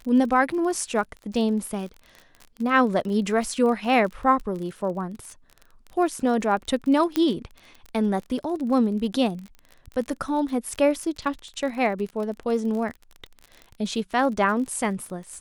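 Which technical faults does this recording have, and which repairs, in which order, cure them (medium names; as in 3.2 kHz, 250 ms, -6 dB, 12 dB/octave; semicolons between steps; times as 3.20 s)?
crackle 38 per s -32 dBFS
7.16 s: pop -9 dBFS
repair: de-click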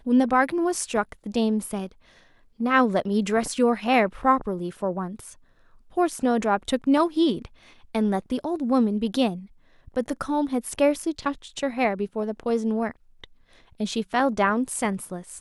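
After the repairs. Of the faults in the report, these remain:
nothing left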